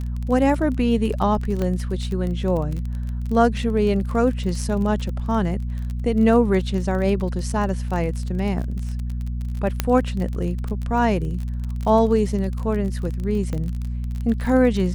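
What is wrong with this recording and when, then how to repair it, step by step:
crackle 28/s -27 dBFS
hum 60 Hz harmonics 4 -26 dBFS
1.62 pop -14 dBFS
9.8 pop -5 dBFS
13.53 pop -17 dBFS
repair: de-click; de-hum 60 Hz, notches 4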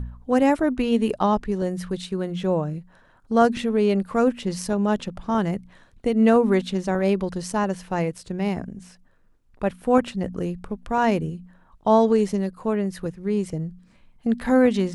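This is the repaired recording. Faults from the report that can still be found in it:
1.62 pop

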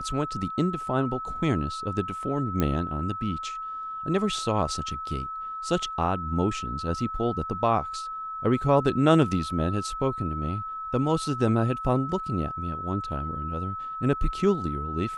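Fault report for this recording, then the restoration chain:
tone 1300 Hz -32 dBFS
2.6 pop -12 dBFS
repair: de-click; notch 1300 Hz, Q 30

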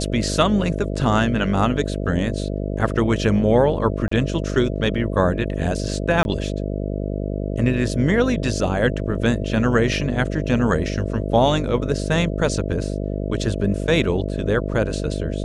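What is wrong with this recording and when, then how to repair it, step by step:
buzz 50 Hz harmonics 13 -25 dBFS
4.08–4.11 gap 34 ms
6.23–6.25 gap 21 ms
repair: de-hum 50 Hz, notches 13; interpolate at 4.08, 34 ms; interpolate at 6.23, 21 ms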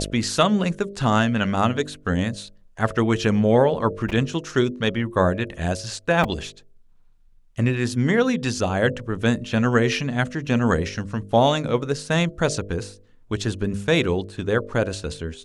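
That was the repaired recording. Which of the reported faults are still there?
none

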